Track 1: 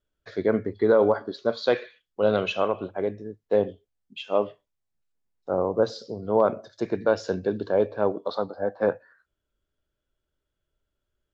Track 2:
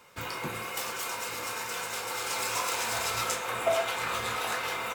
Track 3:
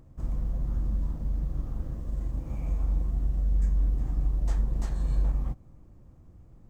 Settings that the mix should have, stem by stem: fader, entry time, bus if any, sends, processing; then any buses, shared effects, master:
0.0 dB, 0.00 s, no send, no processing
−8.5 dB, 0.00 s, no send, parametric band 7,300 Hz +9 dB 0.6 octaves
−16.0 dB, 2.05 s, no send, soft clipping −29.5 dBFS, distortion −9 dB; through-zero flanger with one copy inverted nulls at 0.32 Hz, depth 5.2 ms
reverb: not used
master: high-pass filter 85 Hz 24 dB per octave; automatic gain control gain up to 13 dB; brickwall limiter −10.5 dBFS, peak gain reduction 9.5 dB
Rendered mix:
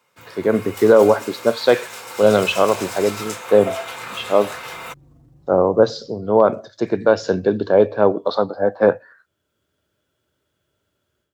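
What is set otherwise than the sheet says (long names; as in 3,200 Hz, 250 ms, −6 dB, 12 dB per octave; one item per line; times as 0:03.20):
stem 2: missing parametric band 7,300 Hz +9 dB 0.6 octaves
master: missing brickwall limiter −10.5 dBFS, peak gain reduction 9.5 dB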